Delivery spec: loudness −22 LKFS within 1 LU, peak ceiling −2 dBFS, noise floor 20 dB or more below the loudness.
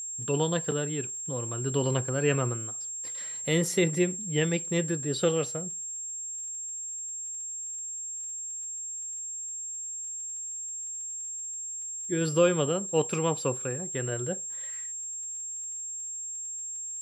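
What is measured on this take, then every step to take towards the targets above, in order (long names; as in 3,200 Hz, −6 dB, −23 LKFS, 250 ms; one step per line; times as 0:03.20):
crackle rate 26 per second; interfering tone 7,500 Hz; level of the tone −34 dBFS; integrated loudness −30.0 LKFS; sample peak −11.5 dBFS; target loudness −22.0 LKFS
→ click removal
notch filter 7,500 Hz, Q 30
level +8 dB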